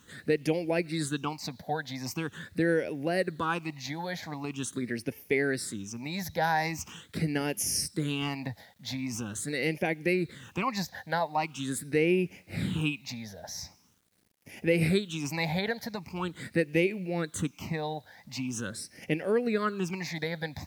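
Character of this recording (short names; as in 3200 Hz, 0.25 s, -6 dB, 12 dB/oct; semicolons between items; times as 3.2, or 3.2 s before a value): phasing stages 8, 0.43 Hz, lowest notch 350–1200 Hz; a quantiser's noise floor 12-bit, dither none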